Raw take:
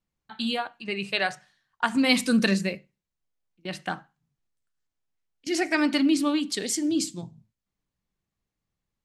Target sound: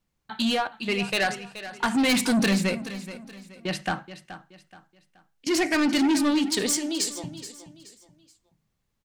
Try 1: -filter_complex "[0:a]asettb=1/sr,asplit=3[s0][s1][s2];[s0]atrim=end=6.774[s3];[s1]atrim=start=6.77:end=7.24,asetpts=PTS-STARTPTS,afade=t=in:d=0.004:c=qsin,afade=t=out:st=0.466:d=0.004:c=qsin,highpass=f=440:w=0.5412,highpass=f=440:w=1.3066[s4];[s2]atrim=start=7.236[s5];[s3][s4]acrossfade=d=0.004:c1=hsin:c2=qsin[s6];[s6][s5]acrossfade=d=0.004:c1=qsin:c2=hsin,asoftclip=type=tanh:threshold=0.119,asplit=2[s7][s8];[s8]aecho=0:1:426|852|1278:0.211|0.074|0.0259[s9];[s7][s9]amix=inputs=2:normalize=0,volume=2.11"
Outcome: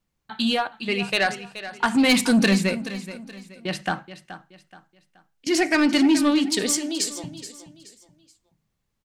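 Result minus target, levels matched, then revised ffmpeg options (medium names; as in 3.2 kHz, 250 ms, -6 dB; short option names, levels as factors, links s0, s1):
saturation: distortion -6 dB
-filter_complex "[0:a]asettb=1/sr,asplit=3[s0][s1][s2];[s0]atrim=end=6.774[s3];[s1]atrim=start=6.77:end=7.24,asetpts=PTS-STARTPTS,afade=t=in:d=0.004:c=qsin,afade=t=out:st=0.466:d=0.004:c=qsin,highpass=f=440:w=0.5412,highpass=f=440:w=1.3066[s4];[s2]atrim=start=7.236[s5];[s3][s4]acrossfade=d=0.004:c1=hsin:c2=qsin[s6];[s6][s5]acrossfade=d=0.004:c1=qsin:c2=hsin,asoftclip=type=tanh:threshold=0.0562,asplit=2[s7][s8];[s8]aecho=0:1:426|852|1278:0.211|0.074|0.0259[s9];[s7][s9]amix=inputs=2:normalize=0,volume=2.11"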